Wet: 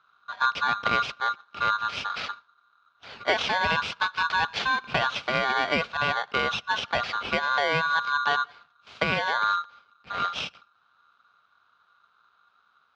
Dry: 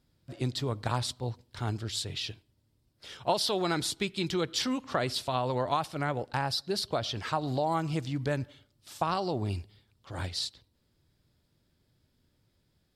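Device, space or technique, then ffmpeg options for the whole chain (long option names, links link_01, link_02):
ring modulator pedal into a guitar cabinet: -af "aeval=exprs='val(0)*sgn(sin(2*PI*1300*n/s))':channel_layout=same,highpass=75,equalizer=frequency=320:width_type=q:width=4:gain=-9,equalizer=frequency=1400:width_type=q:width=4:gain=5,equalizer=frequency=1900:width_type=q:width=4:gain=-8,lowpass=frequency=3800:width=0.5412,lowpass=frequency=3800:width=1.3066,volume=6dB"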